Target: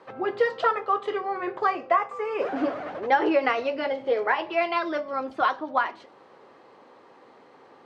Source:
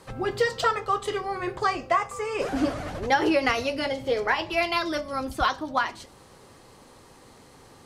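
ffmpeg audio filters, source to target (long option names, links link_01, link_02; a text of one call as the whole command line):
ffmpeg -i in.wav -af "highpass=360,lowpass=3300,highshelf=frequency=2400:gain=-10,volume=3dB" out.wav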